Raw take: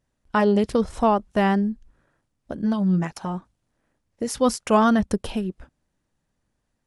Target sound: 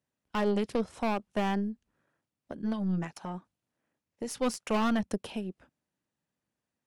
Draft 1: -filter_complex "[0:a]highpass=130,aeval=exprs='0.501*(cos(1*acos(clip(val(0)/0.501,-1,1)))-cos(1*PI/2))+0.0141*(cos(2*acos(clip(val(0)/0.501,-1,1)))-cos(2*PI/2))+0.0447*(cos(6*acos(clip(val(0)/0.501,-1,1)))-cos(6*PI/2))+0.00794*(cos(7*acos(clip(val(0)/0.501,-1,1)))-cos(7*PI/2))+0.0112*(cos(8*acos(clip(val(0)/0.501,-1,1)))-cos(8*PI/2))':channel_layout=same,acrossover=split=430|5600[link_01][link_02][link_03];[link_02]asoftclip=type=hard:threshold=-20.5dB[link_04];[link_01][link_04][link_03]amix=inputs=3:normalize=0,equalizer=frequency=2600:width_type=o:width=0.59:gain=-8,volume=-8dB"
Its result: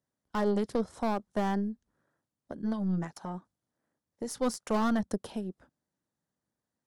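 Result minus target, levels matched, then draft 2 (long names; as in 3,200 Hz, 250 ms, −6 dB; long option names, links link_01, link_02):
2,000 Hz band −3.0 dB
-filter_complex "[0:a]highpass=130,aeval=exprs='0.501*(cos(1*acos(clip(val(0)/0.501,-1,1)))-cos(1*PI/2))+0.0141*(cos(2*acos(clip(val(0)/0.501,-1,1)))-cos(2*PI/2))+0.0447*(cos(6*acos(clip(val(0)/0.501,-1,1)))-cos(6*PI/2))+0.00794*(cos(7*acos(clip(val(0)/0.501,-1,1)))-cos(7*PI/2))+0.0112*(cos(8*acos(clip(val(0)/0.501,-1,1)))-cos(8*PI/2))':channel_layout=same,acrossover=split=430|5600[link_01][link_02][link_03];[link_02]asoftclip=type=hard:threshold=-20.5dB[link_04];[link_01][link_04][link_03]amix=inputs=3:normalize=0,equalizer=frequency=2600:width_type=o:width=0.59:gain=3,volume=-8dB"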